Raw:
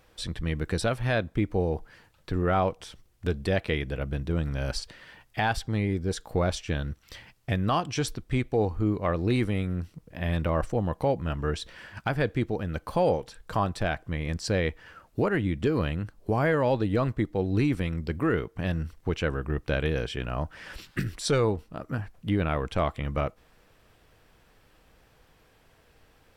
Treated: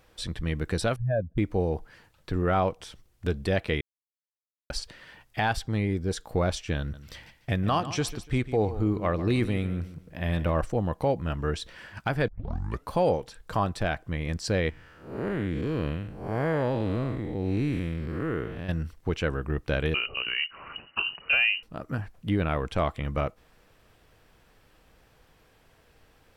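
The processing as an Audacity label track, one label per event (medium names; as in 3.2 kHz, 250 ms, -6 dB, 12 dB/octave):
0.960000	1.380000	spectral contrast enhancement exponent 2.5
3.810000	4.700000	mute
6.790000	10.600000	feedback delay 146 ms, feedback 28%, level -14 dB
12.280000	12.280000	tape start 0.61 s
14.700000	18.690000	spectral blur width 223 ms
19.940000	21.630000	frequency inversion carrier 2.9 kHz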